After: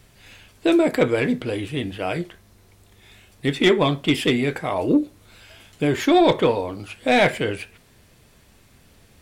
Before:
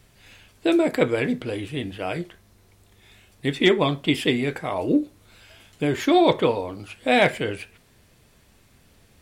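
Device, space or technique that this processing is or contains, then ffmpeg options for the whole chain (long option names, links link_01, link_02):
saturation between pre-emphasis and de-emphasis: -af "highshelf=frequency=2400:gain=8.5,asoftclip=type=tanh:threshold=-9dB,highshelf=frequency=2400:gain=-8.5,volume=3dB"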